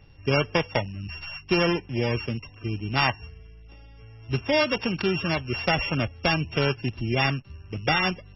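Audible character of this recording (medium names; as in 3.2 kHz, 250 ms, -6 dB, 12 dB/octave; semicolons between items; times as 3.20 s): a buzz of ramps at a fixed pitch in blocks of 16 samples; MP3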